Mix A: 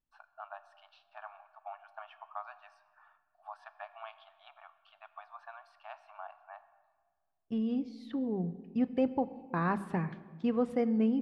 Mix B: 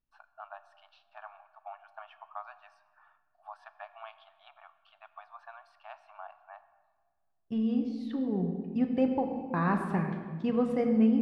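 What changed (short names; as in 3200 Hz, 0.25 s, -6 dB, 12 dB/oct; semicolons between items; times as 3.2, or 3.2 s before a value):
second voice: send +11.5 dB; master: remove notches 50/100/150/200 Hz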